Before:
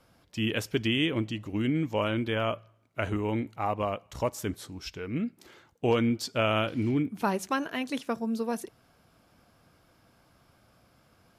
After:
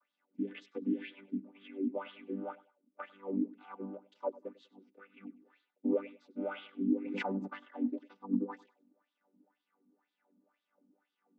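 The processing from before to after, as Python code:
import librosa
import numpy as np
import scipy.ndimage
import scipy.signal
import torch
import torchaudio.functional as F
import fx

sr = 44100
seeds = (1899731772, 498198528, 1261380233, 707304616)

y = fx.chord_vocoder(x, sr, chord='major triad', root=55)
y = fx.wah_lfo(y, sr, hz=2.0, low_hz=240.0, high_hz=3600.0, q=5.0)
y = fx.echo_feedback(y, sr, ms=98, feedback_pct=29, wet_db=-20.0)
y = fx.pre_swell(y, sr, db_per_s=27.0, at=(6.95, 7.46), fade=0.02)
y = y * librosa.db_to_amplitude(2.5)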